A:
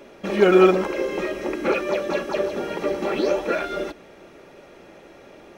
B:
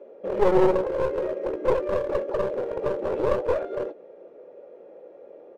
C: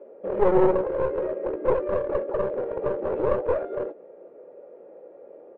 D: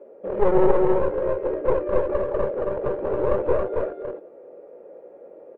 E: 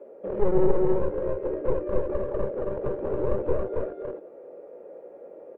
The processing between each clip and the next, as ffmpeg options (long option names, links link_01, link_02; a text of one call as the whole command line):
ffmpeg -i in.wav -filter_complex "[0:a]bandpass=frequency=500:width_type=q:width=5.7:csg=0,aeval=exprs='clip(val(0),-1,0.0237)':channel_layout=same,asplit=2[link_01][link_02];[link_02]adelay=16,volume=-12.5dB[link_03];[link_01][link_03]amix=inputs=2:normalize=0,volume=7.5dB" out.wav
ffmpeg -i in.wav -af "lowpass=1900" out.wav
ffmpeg -i in.wav -af "lowshelf=frequency=79:gain=5.5,aecho=1:1:275:0.708" out.wav
ffmpeg -i in.wav -filter_complex "[0:a]acrossover=split=390[link_01][link_02];[link_02]acompressor=threshold=-38dB:ratio=2[link_03];[link_01][link_03]amix=inputs=2:normalize=0" out.wav